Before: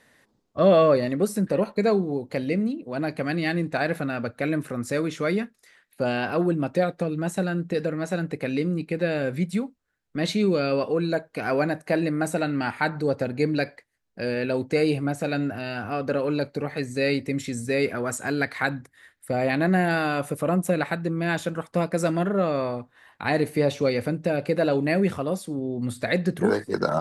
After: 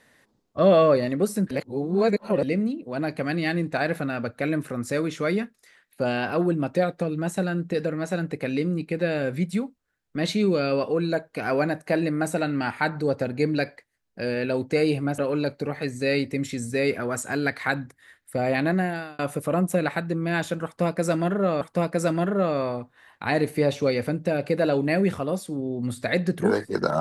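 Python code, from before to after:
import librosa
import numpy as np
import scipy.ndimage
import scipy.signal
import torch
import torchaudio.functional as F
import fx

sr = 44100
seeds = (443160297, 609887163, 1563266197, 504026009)

y = fx.edit(x, sr, fx.reverse_span(start_s=1.51, length_s=0.92),
    fx.cut(start_s=15.18, length_s=0.95),
    fx.fade_out_span(start_s=19.59, length_s=0.55),
    fx.repeat(start_s=21.6, length_s=0.96, count=2), tone=tone)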